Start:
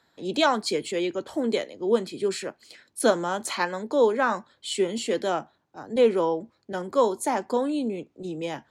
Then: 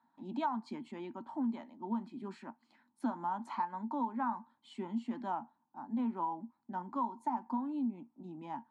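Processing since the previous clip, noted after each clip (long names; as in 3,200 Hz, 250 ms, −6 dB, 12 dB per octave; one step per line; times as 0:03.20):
pair of resonant band-passes 470 Hz, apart 1.9 octaves
downward compressor 5 to 1, threshold −34 dBFS, peak gain reduction 10 dB
level +2.5 dB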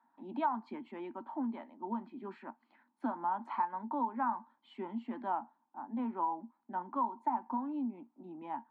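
three-way crossover with the lows and the highs turned down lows −17 dB, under 240 Hz, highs −23 dB, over 3,000 Hz
level +2.5 dB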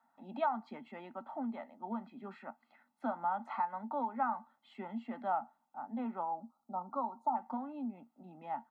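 gain on a spectral selection 0:06.23–0:07.35, 1,400–3,500 Hz −29 dB
comb filter 1.5 ms, depth 74%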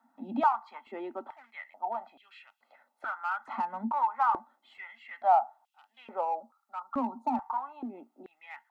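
in parallel at −9 dB: gain into a clipping stage and back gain 35.5 dB
on the sum: high-pass on a step sequencer 2.3 Hz 250–2,900 Hz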